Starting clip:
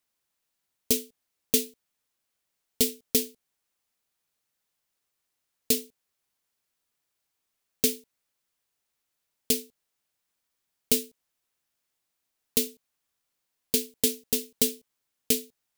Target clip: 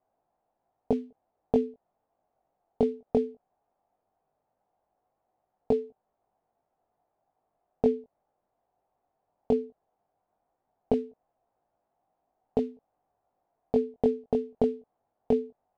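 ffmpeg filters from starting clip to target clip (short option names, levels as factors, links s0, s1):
-filter_complex "[0:a]flanger=delay=18.5:depth=2.5:speed=0.17,asplit=2[s0][s1];[s1]acompressor=threshold=0.0141:ratio=6,volume=1.41[s2];[s0][s2]amix=inputs=2:normalize=0,lowpass=f=740:t=q:w=5,volume=1.41"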